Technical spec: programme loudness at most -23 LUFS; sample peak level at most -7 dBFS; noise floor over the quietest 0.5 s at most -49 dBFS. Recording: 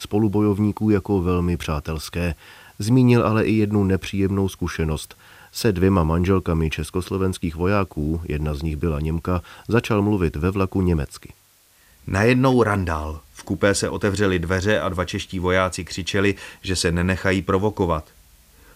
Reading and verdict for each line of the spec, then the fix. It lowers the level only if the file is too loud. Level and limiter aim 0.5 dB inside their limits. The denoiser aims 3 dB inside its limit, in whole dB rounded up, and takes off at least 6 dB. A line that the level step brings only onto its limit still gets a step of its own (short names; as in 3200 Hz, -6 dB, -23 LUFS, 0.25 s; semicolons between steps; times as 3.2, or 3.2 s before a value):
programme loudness -21.5 LUFS: fail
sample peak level -4.0 dBFS: fail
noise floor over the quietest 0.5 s -56 dBFS: OK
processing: gain -2 dB; limiter -7.5 dBFS